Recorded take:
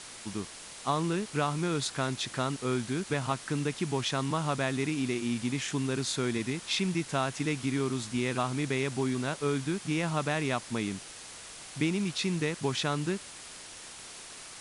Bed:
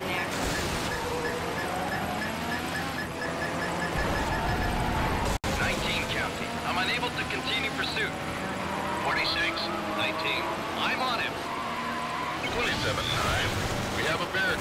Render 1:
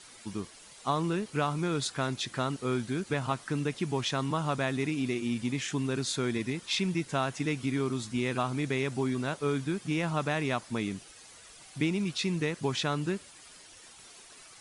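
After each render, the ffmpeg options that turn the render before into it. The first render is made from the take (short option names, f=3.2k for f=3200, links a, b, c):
-af "afftdn=nr=10:nf=-46"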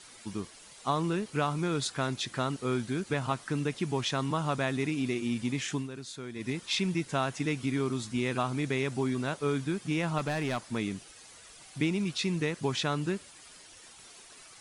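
-filter_complex "[0:a]asettb=1/sr,asplit=3[a][b][c];[a]atrim=end=10.184[d];[b]atrim=start=10.18:end=10.76,asetpts=PTS-STARTPTS,afade=t=in:d=0.004:c=qsin,afade=t=out:st=0.576:d=0.004:c=qsin,asoftclip=type=hard:threshold=-26dB[e];[c]atrim=start=10.756[f];[d][e]acrossfade=d=0.004:c1=hsin:c2=qsin[g];[g][f]acrossfade=d=0.004:c1=qsin:c2=hsin,asplit=3[h][i][j];[h]atrim=end=5.89,asetpts=PTS-STARTPTS,afade=t=out:st=5.74:d=0.15:silence=0.298538[k];[i]atrim=start=5.89:end=6.35,asetpts=PTS-STARTPTS,volume=-10.5dB[l];[j]atrim=start=6.35,asetpts=PTS-STARTPTS,afade=t=in:d=0.15:silence=0.298538[m];[k][l][m]concat=n=3:v=0:a=1"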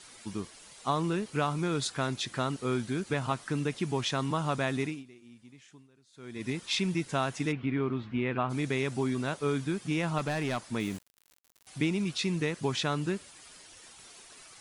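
-filter_complex "[0:a]asplit=3[a][b][c];[a]afade=t=out:st=7.51:d=0.02[d];[b]lowpass=f=2.8k:w=0.5412,lowpass=f=2.8k:w=1.3066,afade=t=in:st=7.51:d=0.02,afade=t=out:st=8.49:d=0.02[e];[c]afade=t=in:st=8.49:d=0.02[f];[d][e][f]amix=inputs=3:normalize=0,asettb=1/sr,asplit=3[g][h][i];[g]atrim=end=10.804[j];[h]atrim=start=10.8:end=11.67,asetpts=PTS-STARTPTS,afade=t=in:d=0.004:c=qsin,afade=t=out:st=0.866:d=0.004:c=qsin,aeval=exprs='val(0)*gte(abs(val(0)),0.0075)':c=same[k];[i]atrim=start=11.666[l];[j][k]acrossfade=d=0.004:c1=hsin:c2=qsin[m];[m][l]acrossfade=d=0.004:c1=qsin:c2=hsin,asplit=3[n][o][p];[n]atrim=end=5.04,asetpts=PTS-STARTPTS,afade=t=out:st=4.81:d=0.23:silence=0.0794328[q];[o]atrim=start=5.04:end=6.12,asetpts=PTS-STARTPTS,volume=-22dB[r];[p]atrim=start=6.12,asetpts=PTS-STARTPTS,afade=t=in:d=0.23:silence=0.0794328[s];[q][r][s]concat=n=3:v=0:a=1"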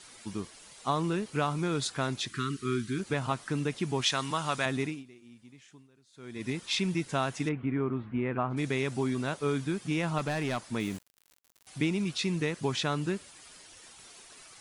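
-filter_complex "[0:a]asplit=3[a][b][c];[a]afade=t=out:st=2.28:d=0.02[d];[b]asuperstop=centerf=680:order=12:qfactor=0.99,afade=t=in:st=2.28:d=0.02,afade=t=out:st=2.98:d=0.02[e];[c]afade=t=in:st=2.98:d=0.02[f];[d][e][f]amix=inputs=3:normalize=0,asettb=1/sr,asplit=3[g][h][i];[g]atrim=end=4.014[j];[h]atrim=start=4.01:end=4.66,asetpts=PTS-STARTPTS,afade=t=in:d=0.004:c=qsin,afade=t=out:st=0.646:d=0.004:c=qsin,tiltshelf=f=850:g=-6[k];[i]atrim=start=4.656[l];[j][k]acrossfade=d=0.004:c1=hsin:c2=qsin[m];[m][l]acrossfade=d=0.004:c1=qsin:c2=hsin,asplit=3[n][o][p];[n]afade=t=out:st=7.48:d=0.02[q];[o]lowpass=1.9k,afade=t=in:st=7.48:d=0.02,afade=t=out:st=8.56:d=0.02[r];[p]afade=t=in:st=8.56:d=0.02[s];[q][r][s]amix=inputs=3:normalize=0"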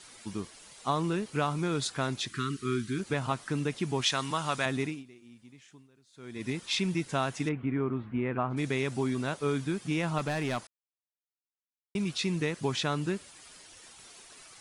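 -filter_complex "[0:a]asplit=3[a][b][c];[a]atrim=end=10.67,asetpts=PTS-STARTPTS,afade=t=out:st=10.666:d=0.004:c=hsin[d];[b]atrim=start=10.67:end=11.95,asetpts=PTS-STARTPTS,volume=0[e];[c]atrim=start=11.95,asetpts=PTS-STARTPTS,afade=t=in:d=0.004:c=hsin[f];[d][e][f]concat=n=3:v=0:a=1"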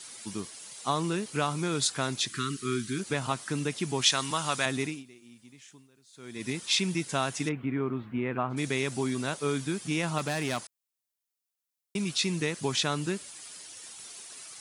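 -af "highpass=100,highshelf=f=4.2k:g=10.5"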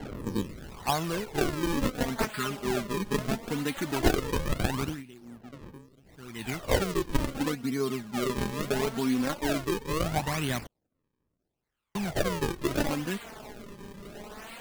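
-af "acrusher=samples=36:mix=1:aa=0.000001:lfo=1:lforange=57.6:lforate=0.74,aphaser=in_gain=1:out_gain=1:delay=5:decay=0.57:speed=0.18:type=sinusoidal"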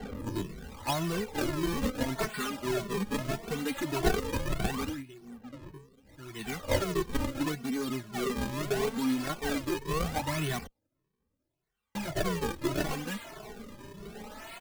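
-filter_complex "[0:a]asplit=2[a][b];[b]aeval=exprs='(mod(16.8*val(0)+1,2)-1)/16.8':c=same,volume=-11.5dB[c];[a][c]amix=inputs=2:normalize=0,asplit=2[d][e];[e]adelay=2.2,afreqshift=1.7[f];[d][f]amix=inputs=2:normalize=1"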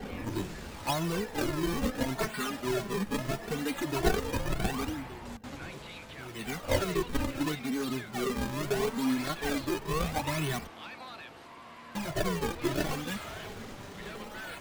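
-filter_complex "[1:a]volume=-17dB[a];[0:a][a]amix=inputs=2:normalize=0"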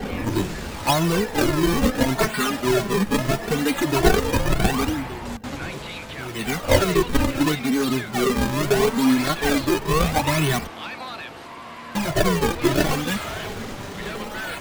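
-af "volume=11dB,alimiter=limit=-3dB:level=0:latency=1"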